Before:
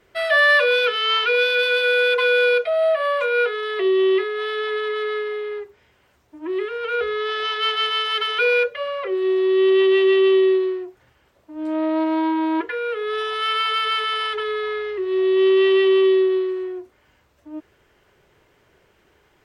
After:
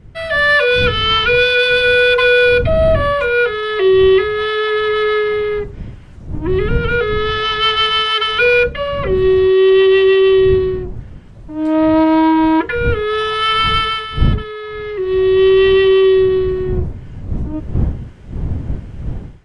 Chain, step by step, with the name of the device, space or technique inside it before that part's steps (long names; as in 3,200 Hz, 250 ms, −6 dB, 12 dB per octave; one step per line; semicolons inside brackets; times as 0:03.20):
smartphone video outdoors (wind on the microphone 110 Hz −26 dBFS; automatic gain control; level −1 dB; AAC 96 kbit/s 24,000 Hz)